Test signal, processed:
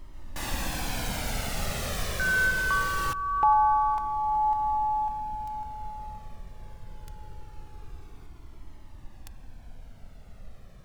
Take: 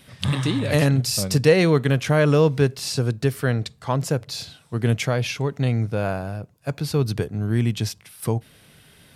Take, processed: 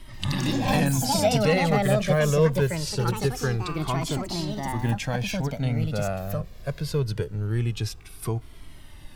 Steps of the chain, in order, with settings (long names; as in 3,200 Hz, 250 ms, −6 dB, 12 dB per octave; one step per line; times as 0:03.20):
high-shelf EQ 11,000 Hz −4 dB
in parallel at −2 dB: downward compressor, threshold −31 dBFS
on the sum: background noise brown −39 dBFS
delay with pitch and tempo change per echo 136 ms, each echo +5 semitones, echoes 2
flanger whose copies keep moving one way falling 0.23 Hz
level −2 dB